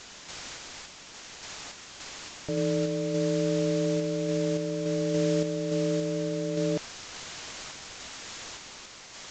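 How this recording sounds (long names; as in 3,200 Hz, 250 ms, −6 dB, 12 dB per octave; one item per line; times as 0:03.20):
a quantiser's noise floor 6 bits, dither triangular
sample-and-hold tremolo
Ogg Vorbis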